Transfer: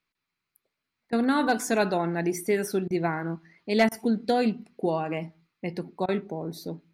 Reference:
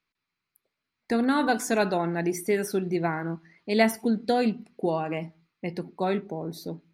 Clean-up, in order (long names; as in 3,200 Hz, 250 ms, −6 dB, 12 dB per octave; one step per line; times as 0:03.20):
clipped peaks rebuilt −13 dBFS
repair the gap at 0:01.10/0:02.88/0:03.89/0:06.06, 24 ms